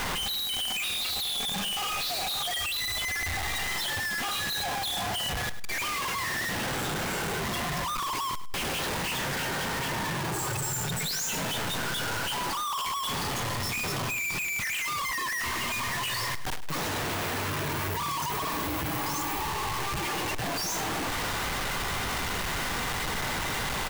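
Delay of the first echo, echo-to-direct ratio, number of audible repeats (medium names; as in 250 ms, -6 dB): 103 ms, -13.5 dB, 2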